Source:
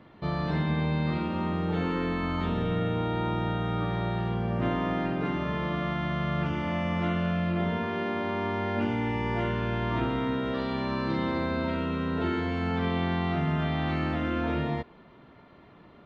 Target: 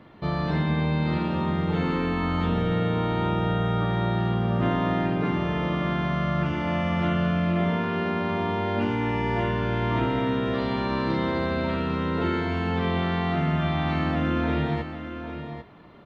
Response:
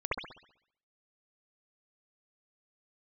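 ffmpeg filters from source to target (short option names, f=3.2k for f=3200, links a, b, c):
-af "aecho=1:1:797:0.335,volume=3dB"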